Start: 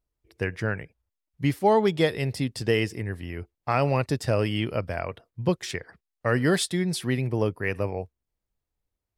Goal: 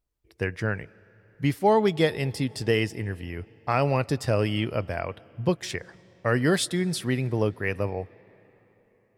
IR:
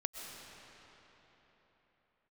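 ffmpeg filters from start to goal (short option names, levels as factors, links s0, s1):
-filter_complex "[0:a]asplit=2[s0][s1];[1:a]atrim=start_sample=2205,adelay=19[s2];[s1][s2]afir=irnorm=-1:irlink=0,volume=0.0891[s3];[s0][s3]amix=inputs=2:normalize=0"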